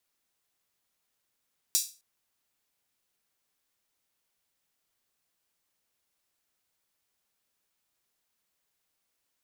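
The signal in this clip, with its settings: open hi-hat length 0.26 s, high-pass 5300 Hz, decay 0.32 s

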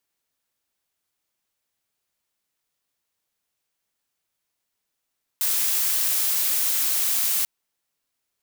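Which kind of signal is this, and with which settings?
noise blue, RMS -22.5 dBFS 2.04 s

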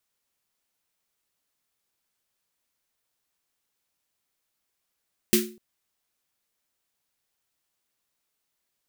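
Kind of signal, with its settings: snare drum length 0.25 s, tones 220 Hz, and 360 Hz, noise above 1600 Hz, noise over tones 0 dB, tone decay 0.40 s, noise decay 0.28 s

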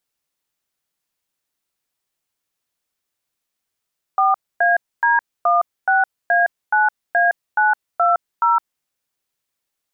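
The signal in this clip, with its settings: DTMF "4AD16A9A920", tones 0.163 s, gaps 0.261 s, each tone -15 dBFS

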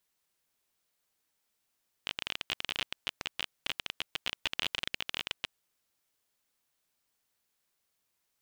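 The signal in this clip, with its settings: random clicks 26/s -15 dBFS 3.47 s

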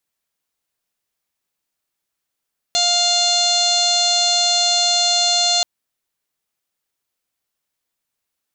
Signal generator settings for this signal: steady additive tone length 2.88 s, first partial 702 Hz, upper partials -12/-13.5/-5/0.5/5/-9/-10.5/-3/-3.5/-12 dB, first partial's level -22 dB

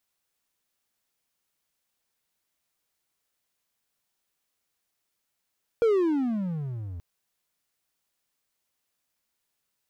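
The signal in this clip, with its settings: gliding synth tone triangle, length 1.18 s, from 477 Hz, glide -30.5 st, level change -17 dB, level -15.5 dB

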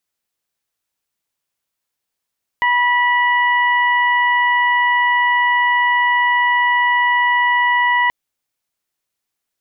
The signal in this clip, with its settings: steady additive tone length 5.48 s, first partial 975 Hz, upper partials 0/-14 dB, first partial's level -15 dB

